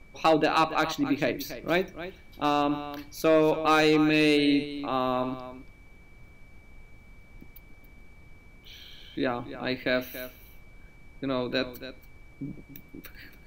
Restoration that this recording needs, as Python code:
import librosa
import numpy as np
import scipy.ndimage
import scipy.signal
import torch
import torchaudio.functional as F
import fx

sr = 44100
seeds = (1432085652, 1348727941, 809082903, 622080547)

y = fx.fix_declip(x, sr, threshold_db=-13.5)
y = fx.notch(y, sr, hz=2300.0, q=30.0)
y = fx.noise_reduce(y, sr, print_start_s=5.72, print_end_s=6.22, reduce_db=19.0)
y = fx.fix_echo_inverse(y, sr, delay_ms=281, level_db=-13.0)